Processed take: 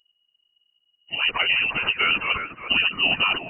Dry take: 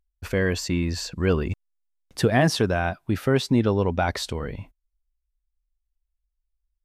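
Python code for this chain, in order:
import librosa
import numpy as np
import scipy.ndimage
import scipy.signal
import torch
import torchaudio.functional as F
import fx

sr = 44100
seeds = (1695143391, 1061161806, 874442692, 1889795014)

y = np.flip(x).copy()
y = fx.high_shelf(y, sr, hz=2100.0, db=10.0)
y = fx.over_compress(y, sr, threshold_db=-24.0, ratio=-1.0)
y = fx.echo_thinned(y, sr, ms=693, feedback_pct=21, hz=940.0, wet_db=-6)
y = fx.stretch_vocoder_free(y, sr, factor=0.51)
y = fx.freq_invert(y, sr, carrier_hz=2900)
y = F.gain(torch.from_numpy(y), 6.5).numpy()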